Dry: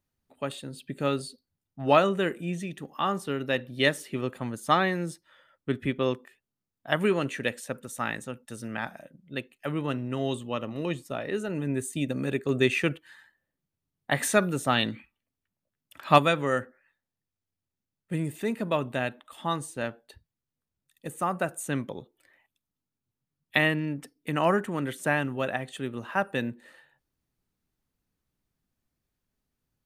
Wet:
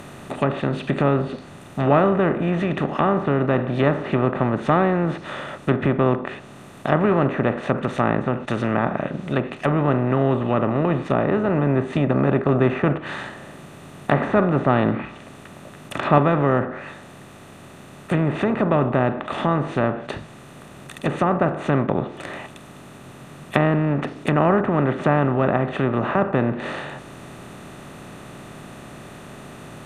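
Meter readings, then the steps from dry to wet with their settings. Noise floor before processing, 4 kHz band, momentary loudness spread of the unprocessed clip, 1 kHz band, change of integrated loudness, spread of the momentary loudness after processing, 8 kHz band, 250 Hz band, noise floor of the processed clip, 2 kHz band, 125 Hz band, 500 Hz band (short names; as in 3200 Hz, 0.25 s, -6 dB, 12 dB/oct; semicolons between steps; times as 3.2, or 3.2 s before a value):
under -85 dBFS, -3.0 dB, 14 LU, +7.0 dB, +7.5 dB, 21 LU, n/a, +10.0 dB, -43 dBFS, +2.5 dB, +12.0 dB, +8.5 dB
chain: per-bin compression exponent 0.4; treble ducked by the level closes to 1400 Hz, closed at -18 dBFS; low shelf 260 Hz +10.5 dB; gain -1.5 dB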